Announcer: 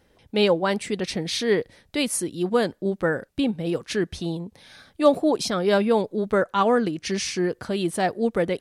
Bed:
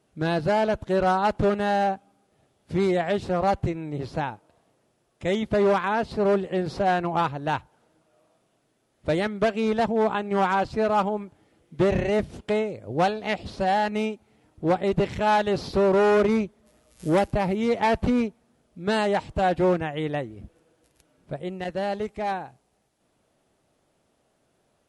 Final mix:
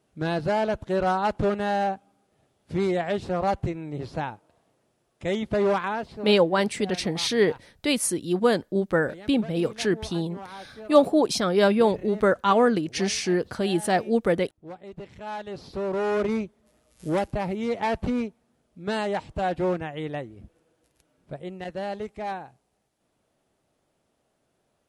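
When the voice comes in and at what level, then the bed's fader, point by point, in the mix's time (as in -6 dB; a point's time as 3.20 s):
5.90 s, +0.5 dB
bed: 5.85 s -2 dB
6.45 s -18.5 dB
14.86 s -18.5 dB
16.30 s -4 dB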